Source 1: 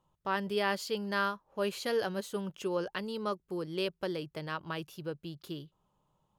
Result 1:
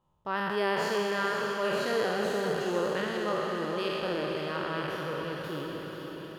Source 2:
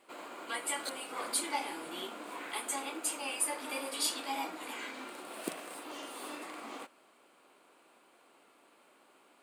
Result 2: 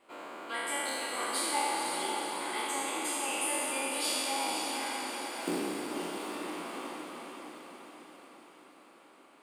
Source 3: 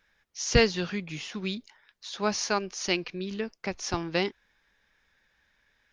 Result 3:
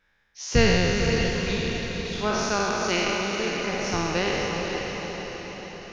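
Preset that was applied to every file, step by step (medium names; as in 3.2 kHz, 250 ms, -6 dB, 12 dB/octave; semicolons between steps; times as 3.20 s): spectral sustain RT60 2.68 s; treble shelf 4.1 kHz -7 dB; on a send: echo that smears into a reverb 501 ms, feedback 57%, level -5.5 dB; on the sum: trim -1 dB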